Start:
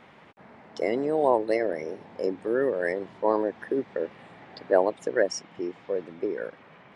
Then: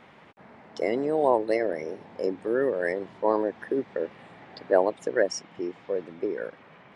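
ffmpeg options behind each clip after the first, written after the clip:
-af anull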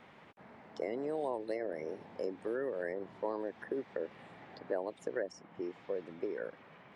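-filter_complex "[0:a]acrossover=split=480|1900[a][b][c];[a]acompressor=threshold=-34dB:ratio=4[d];[b]acompressor=threshold=-34dB:ratio=4[e];[c]acompressor=threshold=-52dB:ratio=4[f];[d][e][f]amix=inputs=3:normalize=0,volume=-5dB"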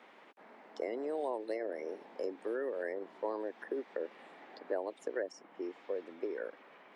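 -af "highpass=f=260:w=0.5412,highpass=f=260:w=1.3066"

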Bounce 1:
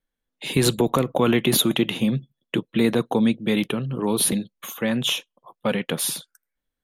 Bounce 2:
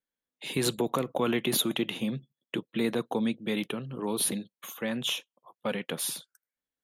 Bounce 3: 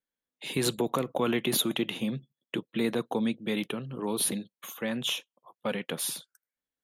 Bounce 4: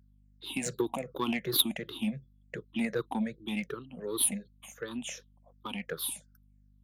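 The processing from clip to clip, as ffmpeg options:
-af "highpass=f=190:p=1,volume=-7dB"
-af anull
-af "afftfilt=real='re*pow(10,23/40*sin(2*PI*(0.57*log(max(b,1)*sr/1024/100)/log(2)-(-2.7)*(pts-256)/sr)))':imag='im*pow(10,23/40*sin(2*PI*(0.57*log(max(b,1)*sr/1024/100)/log(2)-(-2.7)*(pts-256)/sr)))':win_size=1024:overlap=0.75,aeval=exprs='val(0)+0.00316*(sin(2*PI*50*n/s)+sin(2*PI*2*50*n/s)/2+sin(2*PI*3*50*n/s)/3+sin(2*PI*4*50*n/s)/4+sin(2*PI*5*50*n/s)/5)':c=same,aeval=exprs='0.708*(cos(1*acos(clip(val(0)/0.708,-1,1)))-cos(1*PI/2))+0.1*(cos(3*acos(clip(val(0)/0.708,-1,1)))-cos(3*PI/2))+0.0126*(cos(7*acos(clip(val(0)/0.708,-1,1)))-cos(7*PI/2))':c=same,volume=-4dB"

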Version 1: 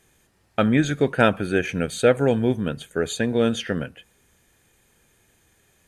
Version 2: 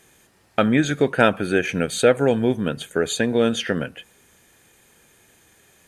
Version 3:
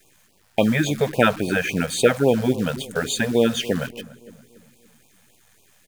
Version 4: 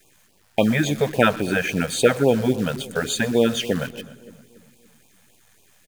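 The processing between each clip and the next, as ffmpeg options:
-filter_complex "[0:a]lowshelf=f=97:g=-11.5,asplit=2[a][b];[b]acompressor=threshold=-29dB:ratio=6,volume=1.5dB[c];[a][c]amix=inputs=2:normalize=0"
-filter_complex "[0:a]acrusher=bits=7:dc=4:mix=0:aa=0.000001,asplit=2[a][b];[b]adelay=288,lowpass=f=1.1k:p=1,volume=-17dB,asplit=2[c][d];[d]adelay=288,lowpass=f=1.1k:p=1,volume=0.52,asplit=2[e][f];[f]adelay=288,lowpass=f=1.1k:p=1,volume=0.52,asplit=2[g][h];[h]adelay=288,lowpass=f=1.1k:p=1,volume=0.52,asplit=2[i][j];[j]adelay=288,lowpass=f=1.1k:p=1,volume=0.52[k];[a][c][e][g][i][k]amix=inputs=6:normalize=0,afftfilt=real='re*(1-between(b*sr/1024,290*pow(1700/290,0.5+0.5*sin(2*PI*3.6*pts/sr))/1.41,290*pow(1700/290,0.5+0.5*sin(2*PI*3.6*pts/sr))*1.41))':imag='im*(1-between(b*sr/1024,290*pow(1700/290,0.5+0.5*sin(2*PI*3.6*pts/sr))/1.41,290*pow(1700/290,0.5+0.5*sin(2*PI*3.6*pts/sr))*1.41))':win_size=1024:overlap=0.75,volume=1dB"
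-af "aecho=1:1:123|246|369|492:0.0841|0.0471|0.0264|0.0148"

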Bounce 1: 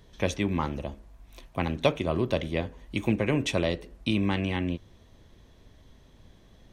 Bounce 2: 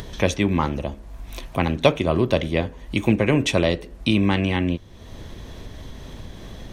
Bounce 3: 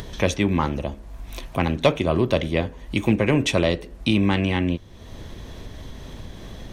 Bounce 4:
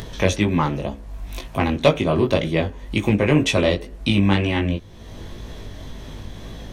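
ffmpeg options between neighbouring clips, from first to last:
-af "acompressor=mode=upward:threshold=-32dB:ratio=2.5,volume=7dB"
-af "asoftclip=type=tanh:threshold=-5dB"
-af "flanger=delay=18:depth=3.4:speed=2,volume=5dB"

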